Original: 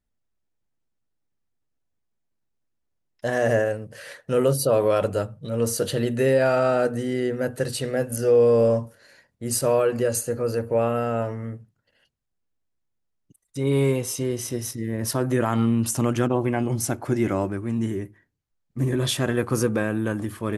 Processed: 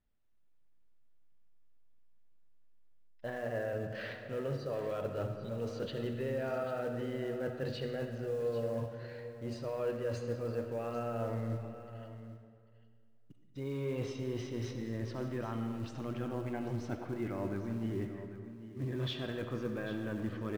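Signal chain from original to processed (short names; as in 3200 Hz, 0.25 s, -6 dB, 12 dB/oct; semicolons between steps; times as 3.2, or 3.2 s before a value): LPF 3900 Hz 24 dB/oct; reverse; compressor 8:1, threshold -33 dBFS, peak gain reduction 18.5 dB; reverse; soft clip -23.5 dBFS, distortion -27 dB; in parallel at -5.5 dB: short-mantissa float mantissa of 2-bit; on the sum: echo 0.794 s -13.5 dB; reverb RT60 2.1 s, pre-delay 25 ms, DRR 6 dB; gain -5 dB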